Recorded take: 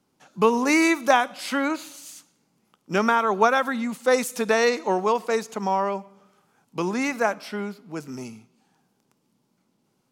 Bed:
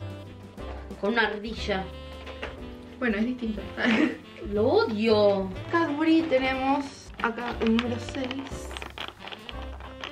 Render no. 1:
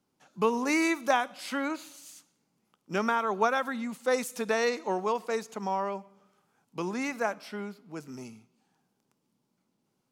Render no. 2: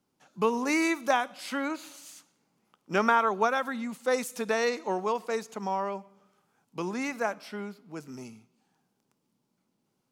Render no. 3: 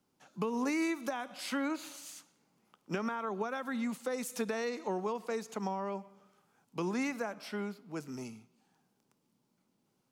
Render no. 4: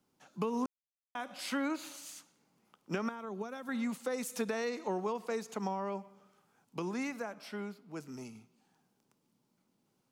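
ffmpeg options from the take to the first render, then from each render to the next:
-af "volume=-7dB"
-filter_complex "[0:a]asettb=1/sr,asplit=3[a][b][c];[a]atrim=end=1.834[d];[b]atrim=start=1.83:end=3.29,asetpts=PTS-STARTPTS,afade=t=in:d=0.004:c=qsin,afade=t=out:st=1.456:d=0.004:c=qsin,equalizer=f=1.1k:w=0.33:g=5[e];[c]atrim=start=3.286[f];[d][e]acrossfade=d=0.004:c1=hsin:c2=qsin[g];[g][f]acrossfade=d=0.004:c1=qsin:c2=hsin"
-filter_complex "[0:a]alimiter=limit=-20dB:level=0:latency=1:release=161,acrossover=split=350[a][b];[b]acompressor=threshold=-36dB:ratio=4[c];[a][c]amix=inputs=2:normalize=0"
-filter_complex "[0:a]asettb=1/sr,asplit=3[a][b][c];[a]atrim=end=3.094[d];[b]atrim=start=3.09:end=3.69,asetpts=PTS-STARTPTS,afade=t=in:d=0.004:c=qsin,afade=t=out:st=0.596:d=0.004:c=qsin,equalizer=f=1.3k:w=0.38:g=-8.5[e];[c]atrim=start=3.686[f];[d][e]acrossfade=d=0.004:c1=hsin:c2=qsin[g];[g][f]acrossfade=d=0.004:c1=qsin:c2=hsin,asplit=5[h][i][j][k][l];[h]atrim=end=0.66,asetpts=PTS-STARTPTS,afade=t=out:st=0.656:d=0.004:c=hsin[m];[i]atrim=start=0.66:end=1.15,asetpts=PTS-STARTPTS,volume=0[n];[j]atrim=start=1.15:end=6.792,asetpts=PTS-STARTPTS,afade=t=in:d=0.004:c=hsin[o];[k]atrim=start=6.788:end=8.352,asetpts=PTS-STARTPTS,volume=-3dB[p];[l]atrim=start=8.348[q];[m][n][o]concat=n=3:v=0:a=1[r];[r][p]acrossfade=d=0.004:c1=hsin:c2=hsin[s];[s][q]acrossfade=d=0.004:c1=hsin:c2=hsin"

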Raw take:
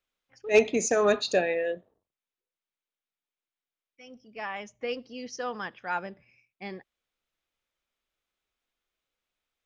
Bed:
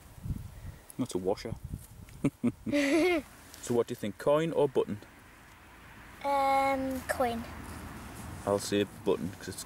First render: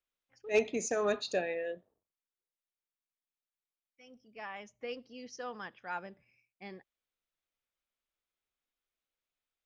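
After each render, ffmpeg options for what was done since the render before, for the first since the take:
-af "volume=-8dB"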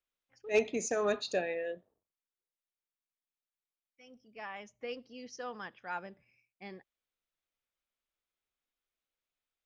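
-af anull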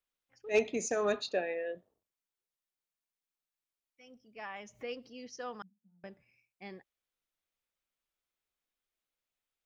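-filter_complex "[0:a]asettb=1/sr,asplit=3[a][b][c];[a]atrim=end=1.294[d];[b]atrim=start=1.29:end=1.75,asetpts=PTS-STARTPTS,afade=t=in:d=0.004:c=qsin,afade=t=out:st=0.456:d=0.004:c=qsin,highpass=220,lowpass=3k[e];[c]atrim=start=1.746[f];[d][e]acrossfade=d=0.004:c1=hsin:c2=qsin[g];[g][f]acrossfade=d=0.004:c1=qsin:c2=hsin,asplit=3[h][i][j];[h]afade=t=out:st=4.5:d=0.02[k];[i]acompressor=mode=upward:threshold=-43dB:ratio=2.5:attack=3.2:release=140:knee=2.83:detection=peak,afade=t=in:st=4.5:d=0.02,afade=t=out:st=5.08:d=0.02[l];[j]afade=t=in:st=5.08:d=0.02[m];[k][l][m]amix=inputs=3:normalize=0,asettb=1/sr,asplit=3[n][o][p];[n]atrim=end=5.624[q];[o]atrim=start=5.62:end=6.04,asetpts=PTS-STARTPTS,afade=t=in:d=0.004:c=qsin,afade=t=out:st=0.416:d=0.004:c=qsin,asuperpass=centerf=200:order=4:qfactor=6.6[r];[p]atrim=start=6.036[s];[q][r]acrossfade=d=0.004:c1=hsin:c2=qsin[t];[t][s]acrossfade=d=0.004:c1=qsin:c2=hsin"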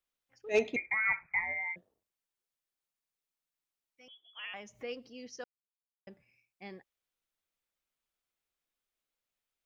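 -filter_complex "[0:a]asettb=1/sr,asplit=3[a][b][c];[a]atrim=end=0.764[d];[b]atrim=start=0.76:end=1.76,asetpts=PTS-STARTPTS,afade=t=in:d=0.004:c=qsin,afade=t=out:st=0.996:d=0.004:c=qsin,lowpass=f=2.2k:t=q:w=0.5098,lowpass=f=2.2k:t=q:w=0.6013,lowpass=f=2.2k:t=q:w=0.9,lowpass=f=2.2k:t=q:w=2.563,afreqshift=-2600[e];[c]atrim=start=1.756[f];[d][e]acrossfade=d=0.004:c1=hsin:c2=qsin[g];[g][f]acrossfade=d=0.004:c1=qsin:c2=hsin,asettb=1/sr,asplit=3[h][i][j];[h]atrim=end=4.084[k];[i]atrim=start=4.08:end=4.54,asetpts=PTS-STARTPTS,afade=t=in:d=0.004:c=qsin,afade=t=out:st=0.456:d=0.004:c=qsin,lowpass=f=3.1k:t=q:w=0.5098,lowpass=f=3.1k:t=q:w=0.6013,lowpass=f=3.1k:t=q:w=0.9,lowpass=f=3.1k:t=q:w=2.563,afreqshift=-3600[l];[j]atrim=start=4.536[m];[k][l]acrossfade=d=0.004:c1=hsin:c2=qsin[n];[n][m]acrossfade=d=0.004:c1=qsin:c2=hsin,asplit=3[o][p][q];[o]atrim=end=5.44,asetpts=PTS-STARTPTS,afade=t=out:st=5.436:d=0.004:c=hsin[r];[p]atrim=start=5.44:end=6.07,asetpts=PTS-STARTPTS,volume=0[s];[q]atrim=start=6.07,asetpts=PTS-STARTPTS,afade=t=in:d=0.004:c=hsin[t];[r][s][t]concat=n=3:v=0:a=1"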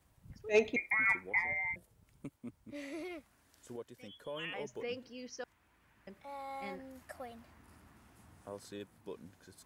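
-filter_complex "[1:a]volume=-17.5dB[a];[0:a][a]amix=inputs=2:normalize=0"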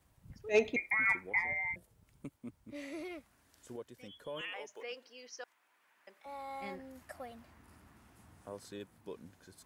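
-filter_complex "[0:a]asettb=1/sr,asplit=3[a][b][c];[a]atrim=end=4.414[d];[b]atrim=start=4.41:end=6.26,asetpts=PTS-STARTPTS,afade=t=in:d=0.004:c=qsin,afade=t=out:st=1.846:d=0.004:c=qsin,highpass=580[e];[c]atrim=start=6.256[f];[d][e]acrossfade=d=0.004:c1=hsin:c2=qsin[g];[g][f]acrossfade=d=0.004:c1=qsin:c2=hsin"

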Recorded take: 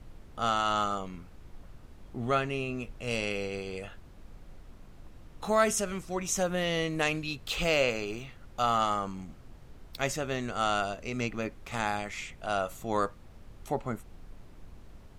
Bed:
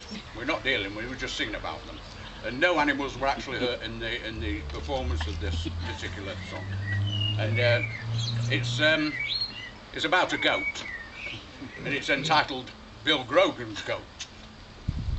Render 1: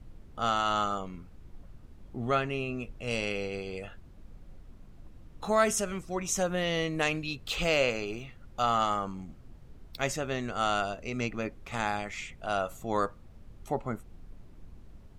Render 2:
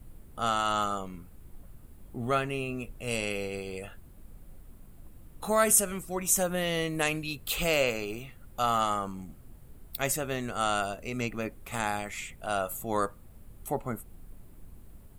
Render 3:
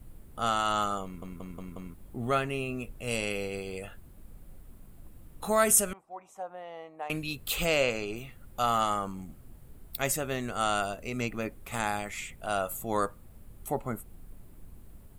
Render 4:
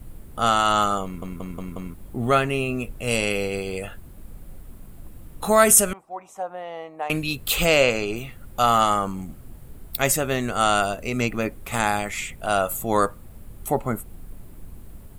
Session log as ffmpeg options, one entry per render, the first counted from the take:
-af "afftdn=nr=6:nf=-52"
-af "aexciter=amount=6.9:drive=5.3:freq=8.2k"
-filter_complex "[0:a]asettb=1/sr,asplit=3[a][b][c];[a]atrim=end=5.934[d];[b]atrim=start=5.93:end=7.1,asetpts=PTS-STARTPTS,afade=t=in:d=0.004:c=qsin,afade=t=out:st=1.166:d=0.004:c=qsin,bandpass=f=810:t=q:w=4.4[e];[c]atrim=start=7.096[f];[d][e]acrossfade=d=0.004:c1=hsin:c2=qsin[g];[g][f]acrossfade=d=0.004:c1=qsin:c2=hsin,asettb=1/sr,asplit=3[h][i][j];[h]atrim=end=7.654[k];[i]atrim=start=7.65:end=8.16,asetpts=PTS-STARTPTS,afade=t=in:d=0.004:c=qsin,afade=t=out:st=0.506:d=0.004:c=qsin,lowpass=8.4k[l];[j]atrim=start=8.156[m];[k][l]acrossfade=d=0.004:c1=hsin:c2=qsin[n];[n][m]acrossfade=d=0.004:c1=qsin:c2=hsin,asplit=6[o][p][q][r][s][t];[o]atrim=end=1.222[u];[p]atrim=start=1.038:end=1.222[v];[q]atrim=start=1.038:end=1.222[w];[r]atrim=start=1.038:end=1.222[x];[s]atrim=start=1.038:end=1.222[y];[t]atrim=start=1.938[z];[u][v]acrossfade=d=0.004:c1=hsin:c2=hsin[aa];[aa][w]acrossfade=d=0.004:c1=hsin:c2=hsin[ab];[ab][x]acrossfade=d=0.004:c1=hsin:c2=hsin[ac];[ac][y]acrossfade=d=0.004:c1=hsin:c2=hsin[ad];[ad][z]acrossfade=d=0.004:c1=hsin:c2=hsin"
-af "volume=8.5dB,alimiter=limit=-2dB:level=0:latency=1"

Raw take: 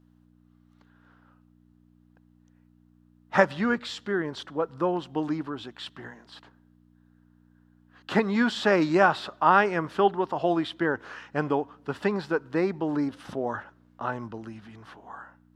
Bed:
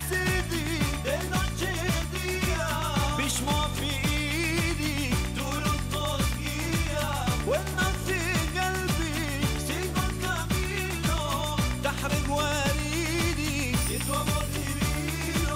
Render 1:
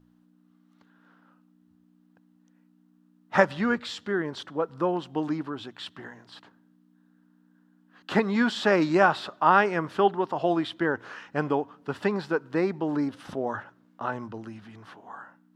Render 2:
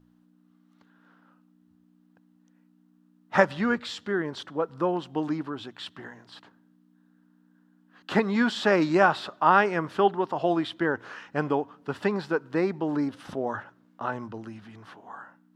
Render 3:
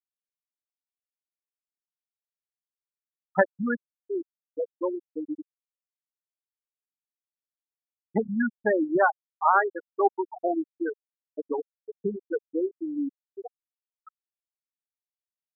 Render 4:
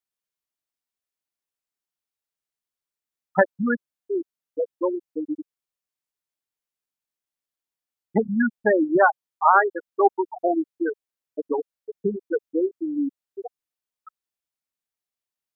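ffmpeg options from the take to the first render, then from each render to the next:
-af "bandreject=f=60:t=h:w=4,bandreject=f=120:t=h:w=4"
-af anull
-af "asubboost=boost=2.5:cutoff=89,afftfilt=real='re*gte(hypot(re,im),0.316)':imag='im*gte(hypot(re,im),0.316)':win_size=1024:overlap=0.75"
-af "volume=4.5dB,alimiter=limit=-3dB:level=0:latency=1"

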